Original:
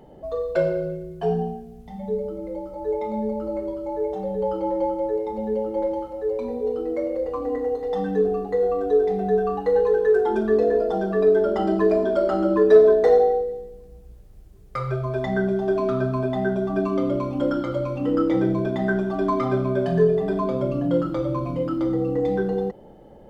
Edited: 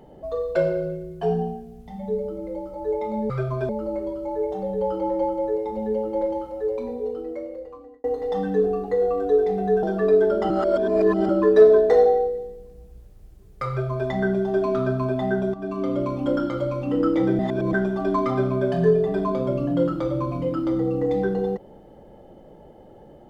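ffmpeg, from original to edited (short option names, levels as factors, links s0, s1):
-filter_complex "[0:a]asplit=10[s0][s1][s2][s3][s4][s5][s6][s7][s8][s9];[s0]atrim=end=3.302[s10];[s1]atrim=start=14.828:end=15.222[s11];[s2]atrim=start=3.298:end=7.65,asetpts=PTS-STARTPTS,afade=t=out:st=2.942:d=1.41[s12];[s3]atrim=start=7.65:end=9.442,asetpts=PTS-STARTPTS,afade=t=in:d=0.004:c=hsin[s13];[s4]atrim=start=10.968:end=11.642[s14];[s5]atrim=start=11.638:end=12.432,asetpts=PTS-STARTPTS,areverse[s15];[s6]atrim=start=12.428:end=16.68,asetpts=PTS-STARTPTS,afade=t=out:st=4.248:d=0.004:c=hsin:silence=0.223872[s16];[s7]atrim=start=16.68:end=18.532,asetpts=PTS-STARTPTS,afade=t=in:d=0.67:c=qsin:silence=0.223872[s17];[s8]atrim=start=18.528:end=18.872,asetpts=PTS-STARTPTS,areverse[s18];[s9]atrim=start=18.868[s19];[s10][s11]acrossfade=d=0.004:c1=hsin:c2=hsin[s20];[s12][s13]concat=n=2:v=0:a=1[s21];[s20][s21]acrossfade=d=0.004:c1=hsin:c2=hsin[s22];[s22][s14]acrossfade=d=0.004:c1=hsin:c2=hsin[s23];[s23][s15]acrossfade=d=0.004:c1=hsin:c2=hsin[s24];[s16][s17]concat=n=2:v=0:a=1[s25];[s24][s25]acrossfade=d=0.004:c1=hsin:c2=hsin[s26];[s26][s18]acrossfade=d=0.004:c1=hsin:c2=hsin[s27];[s27][s19]acrossfade=d=0.004:c1=hsin:c2=hsin"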